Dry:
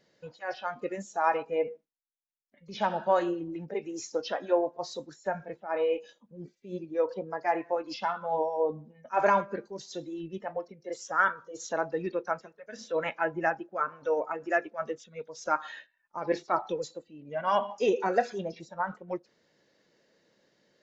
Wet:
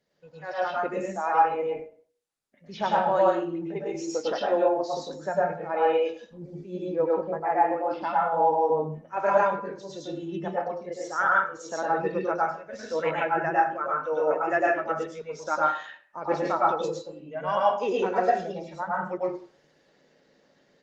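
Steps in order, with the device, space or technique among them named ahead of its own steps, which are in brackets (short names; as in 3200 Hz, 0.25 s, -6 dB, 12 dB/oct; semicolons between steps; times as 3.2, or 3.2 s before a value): 6.89–8.49 LPF 1500 Hz -> 2700 Hz 12 dB/oct; de-hum 290.3 Hz, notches 7; far-field microphone of a smart speaker (reverb RT60 0.45 s, pre-delay 99 ms, DRR -4.5 dB; HPF 88 Hz 12 dB/oct; AGC gain up to 10 dB; gain -8 dB; Opus 24 kbps 48000 Hz)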